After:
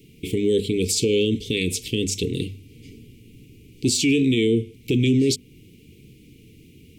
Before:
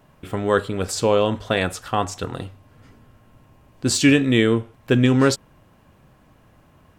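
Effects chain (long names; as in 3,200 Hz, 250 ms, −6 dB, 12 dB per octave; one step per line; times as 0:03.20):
Chebyshev band-stop filter 450–2,200 Hz, order 5
low-shelf EQ 69 Hz −9.5 dB
mains-hum notches 50/100/150/200/250 Hz
in parallel at −1 dB: downward compressor, threshold −31 dBFS, peak gain reduction 18 dB
on the sum: brickwall limiter −16 dBFS, peak gain reduction 11 dB
level +4 dB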